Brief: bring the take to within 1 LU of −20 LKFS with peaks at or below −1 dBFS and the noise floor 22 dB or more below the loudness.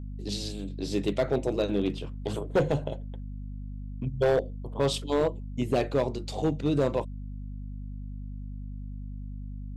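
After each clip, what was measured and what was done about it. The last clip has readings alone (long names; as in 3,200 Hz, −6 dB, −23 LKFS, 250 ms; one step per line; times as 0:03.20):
share of clipped samples 1.0%; peaks flattened at −18.0 dBFS; mains hum 50 Hz; hum harmonics up to 250 Hz; level of the hum −35 dBFS; integrated loudness −29.0 LKFS; sample peak −18.0 dBFS; target loudness −20.0 LKFS
→ clipped peaks rebuilt −18 dBFS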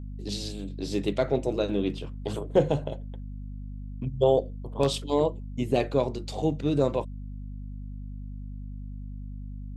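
share of clipped samples 0.0%; mains hum 50 Hz; hum harmonics up to 250 Hz; level of the hum −35 dBFS
→ hum removal 50 Hz, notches 5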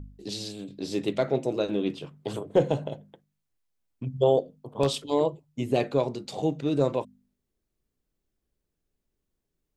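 mains hum none found; integrated loudness −28.0 LKFS; sample peak −9.5 dBFS; target loudness −20.0 LKFS
→ level +8 dB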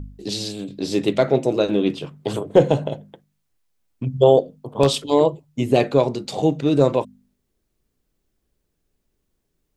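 integrated loudness −20.0 LKFS; sample peak −1.5 dBFS; background noise floor −74 dBFS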